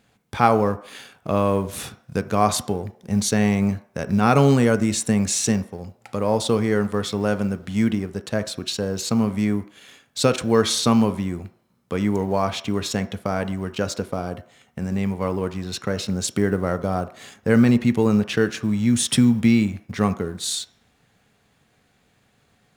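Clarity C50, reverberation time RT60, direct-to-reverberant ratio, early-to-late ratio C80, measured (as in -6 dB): 16.0 dB, 0.55 s, 11.0 dB, 19.0 dB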